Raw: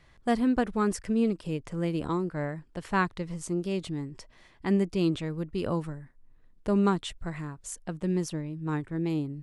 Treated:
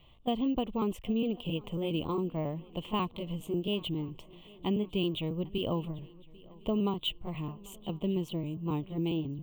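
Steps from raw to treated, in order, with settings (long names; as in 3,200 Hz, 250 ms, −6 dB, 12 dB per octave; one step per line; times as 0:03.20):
pitch shifter gated in a rhythm +1 semitone, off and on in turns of 136 ms
drawn EQ curve 1,100 Hz 0 dB, 1,600 Hz −25 dB, 3,000 Hz +13 dB, 5,000 Hz −20 dB, 7,400 Hz −11 dB
downward compressor 4 to 1, threshold −27 dBFS, peak gain reduction 6.5 dB
feedback echo with a long and a short gap by turns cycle 1,056 ms, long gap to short 3 to 1, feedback 44%, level −23.5 dB
bad sample-rate conversion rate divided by 2×, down filtered, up hold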